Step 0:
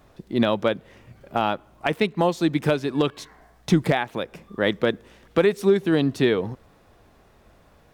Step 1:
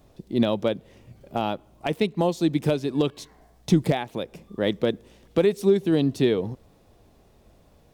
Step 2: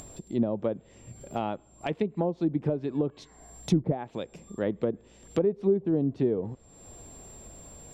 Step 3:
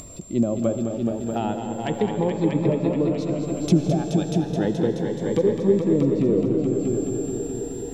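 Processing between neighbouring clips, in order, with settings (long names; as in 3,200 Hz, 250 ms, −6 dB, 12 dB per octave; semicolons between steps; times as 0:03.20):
parametric band 1,500 Hz −10 dB 1.5 octaves
steady tone 7,400 Hz −55 dBFS; treble cut that deepens with the level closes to 710 Hz, closed at −17.5 dBFS; upward compression, threshold −31 dBFS; level −4.5 dB
echo machine with several playback heads 213 ms, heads all three, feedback 59%, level −8.5 dB; comb and all-pass reverb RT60 4.5 s, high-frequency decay 0.8×, pre-delay 45 ms, DRR 8 dB; phaser whose notches keep moving one way rising 0.32 Hz; level +5.5 dB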